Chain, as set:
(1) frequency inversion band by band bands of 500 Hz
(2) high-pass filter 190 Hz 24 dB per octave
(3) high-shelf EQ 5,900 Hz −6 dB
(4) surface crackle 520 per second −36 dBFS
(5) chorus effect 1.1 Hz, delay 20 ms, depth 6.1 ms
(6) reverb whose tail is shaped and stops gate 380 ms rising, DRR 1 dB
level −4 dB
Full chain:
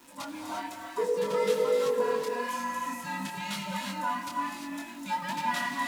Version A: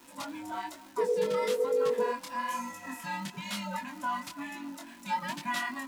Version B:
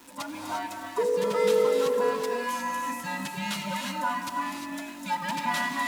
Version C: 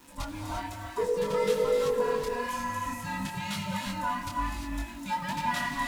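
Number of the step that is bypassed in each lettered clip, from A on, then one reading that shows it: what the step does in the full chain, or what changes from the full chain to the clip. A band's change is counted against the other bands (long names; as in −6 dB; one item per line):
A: 6, change in integrated loudness −2.0 LU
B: 5, change in integrated loudness +2.5 LU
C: 2, 125 Hz band +7.5 dB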